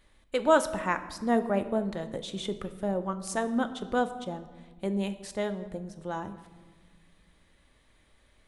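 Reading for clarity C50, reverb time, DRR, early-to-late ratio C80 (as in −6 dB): 12.5 dB, 1.4 s, 9.0 dB, 14.5 dB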